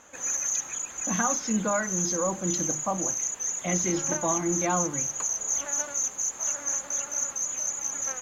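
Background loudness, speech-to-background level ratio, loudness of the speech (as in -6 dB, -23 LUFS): -27.5 LUFS, -3.0 dB, -30.5 LUFS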